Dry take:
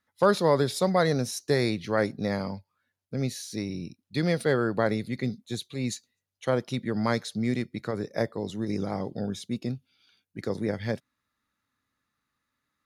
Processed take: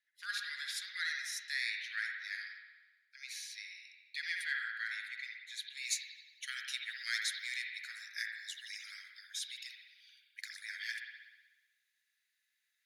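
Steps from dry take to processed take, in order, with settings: steep high-pass 1600 Hz 72 dB/oct; high shelf 4200 Hz -8.5 dB, from 5.77 s +4 dB; spring tank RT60 1.2 s, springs 58 ms, chirp 35 ms, DRR 1 dB; gain -1 dB

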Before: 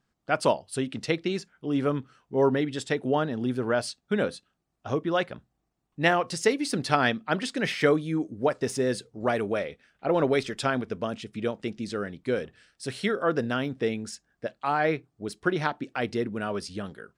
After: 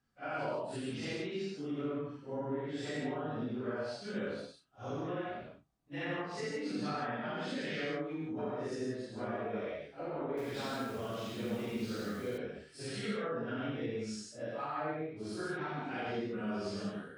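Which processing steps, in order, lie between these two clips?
phase scrambler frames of 0.2 s; treble ducked by the level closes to 1800 Hz, closed at -20.5 dBFS; compressor, threshold -32 dBFS, peak gain reduction 14.5 dB; non-linear reverb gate 0.19 s flat, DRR -2 dB; 10.29–12.38 lo-fi delay 83 ms, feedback 55%, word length 7-bit, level -7 dB; gain -7 dB

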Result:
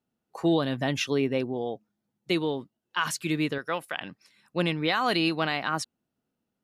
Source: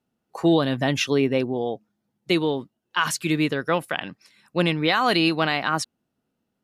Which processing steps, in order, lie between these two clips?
3.58–4.01 low shelf 380 Hz -10 dB; gain -5 dB

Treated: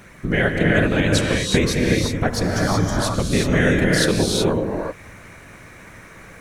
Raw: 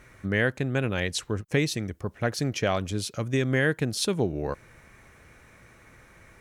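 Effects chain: 2.52–2.98 fixed phaser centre 1100 Hz, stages 4; in parallel at -2 dB: compressor, threshold -32 dBFS, peak gain reduction 12.5 dB; on the sum: whisperiser; non-linear reverb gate 0.4 s rising, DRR -1 dB; gain +3 dB

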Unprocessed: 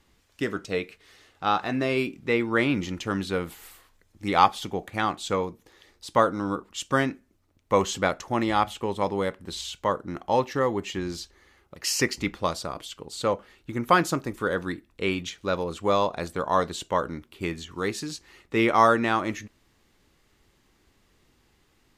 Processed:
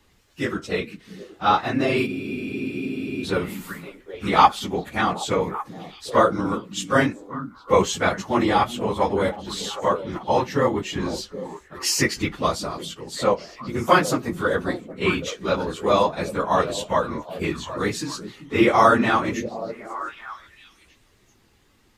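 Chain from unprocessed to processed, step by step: phase scrambler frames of 50 ms; delay with a stepping band-pass 0.385 s, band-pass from 190 Hz, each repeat 1.4 oct, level -8 dB; spectral freeze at 2.08, 1.15 s; gain +4 dB

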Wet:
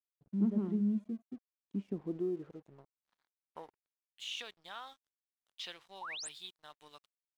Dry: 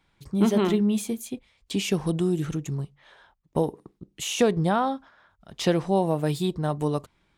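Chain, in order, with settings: dynamic EQ 1300 Hz, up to +6 dB, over -40 dBFS, Q 0.72; band-pass sweep 210 Hz -> 3400 Hz, 1.76–4.12; crossover distortion -55 dBFS; painted sound rise, 6.01–6.29, 780–9900 Hz -34 dBFS; gain -8.5 dB

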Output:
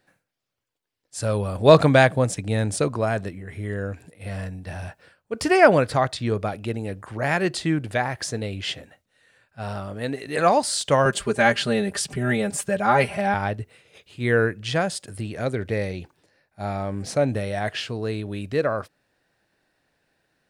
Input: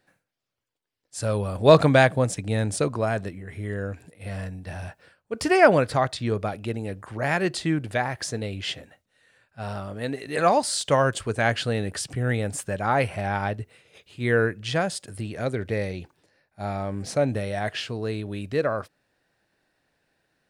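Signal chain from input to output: 11.05–13.34 comb 5 ms, depth 99%; gain +1.5 dB

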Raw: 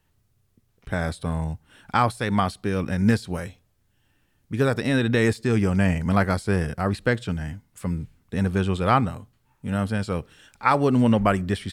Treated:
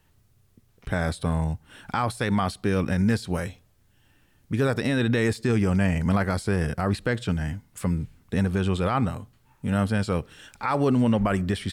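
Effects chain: in parallel at -2.5 dB: compressor, threshold -34 dBFS, peak gain reduction 18.5 dB; on the sum: limiter -14 dBFS, peak gain reduction 10.5 dB

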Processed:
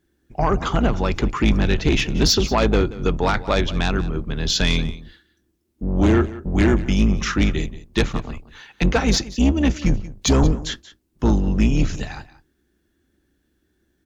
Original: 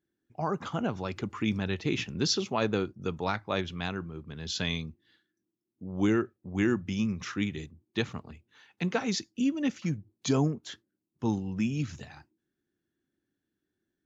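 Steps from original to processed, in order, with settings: octaver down 2 oct, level +2 dB; bell 110 Hz -3 dB 1.6 oct; in parallel at -2.5 dB: compressor, threshold -33 dBFS, peak gain reduction 12.5 dB; on the sum: sine folder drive 6 dB, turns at -10.5 dBFS; echo 0.181 s -17 dB

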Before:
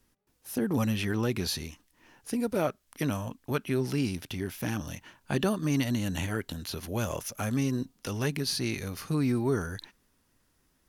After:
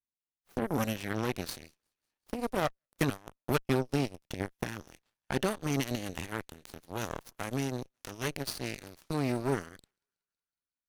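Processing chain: thinning echo 0.185 s, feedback 77%, high-pass 590 Hz, level -18 dB; 2.57–4.64 transient shaper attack +6 dB, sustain -11 dB; added harmonics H 5 -27 dB, 6 -20 dB, 7 -15 dB, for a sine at -13.5 dBFS; gain -3 dB

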